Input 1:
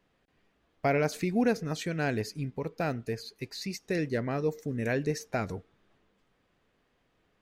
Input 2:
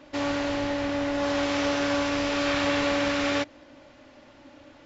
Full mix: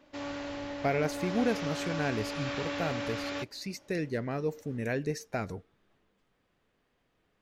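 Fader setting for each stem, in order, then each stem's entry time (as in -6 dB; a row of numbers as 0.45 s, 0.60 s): -2.5 dB, -10.5 dB; 0.00 s, 0.00 s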